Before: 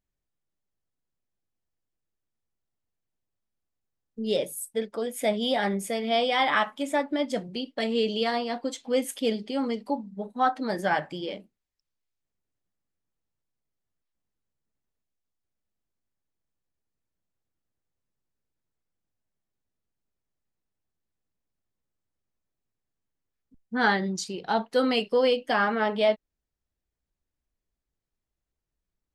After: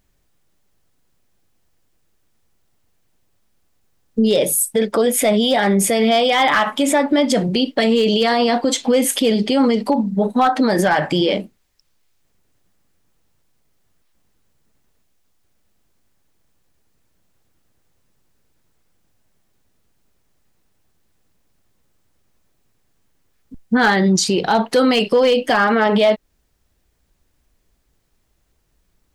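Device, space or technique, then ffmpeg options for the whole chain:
loud club master: -af "acompressor=threshold=0.0398:ratio=1.5,asoftclip=type=hard:threshold=0.106,alimiter=level_in=25.1:limit=0.891:release=50:level=0:latency=1,volume=0.447"

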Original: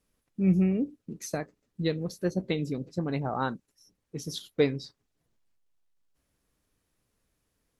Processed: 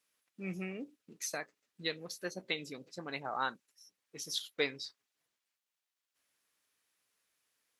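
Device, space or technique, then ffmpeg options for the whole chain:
filter by subtraction: -filter_complex "[0:a]asplit=2[s0][s1];[s1]lowpass=2200,volume=-1[s2];[s0][s2]amix=inputs=2:normalize=0"

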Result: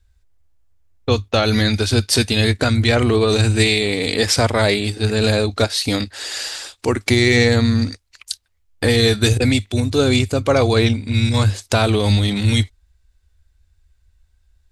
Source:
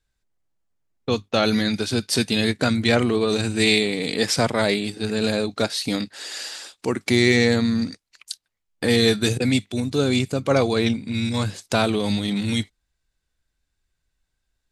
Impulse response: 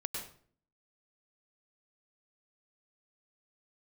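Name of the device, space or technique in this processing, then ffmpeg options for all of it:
car stereo with a boomy subwoofer: -af "lowshelf=f=110:t=q:w=3:g=11,alimiter=limit=0.299:level=0:latency=1:release=136,volume=2"

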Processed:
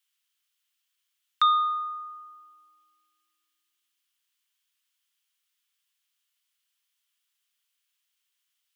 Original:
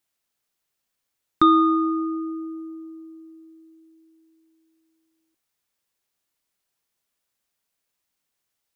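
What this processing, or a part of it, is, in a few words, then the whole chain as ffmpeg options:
headphones lying on a table: -af "highpass=f=860:p=1,highpass=f=1000:w=0.5412,highpass=f=1000:w=1.3066,lowshelf=f=460:g=-8.5,equalizer=f=3100:t=o:w=0.45:g=8.5"

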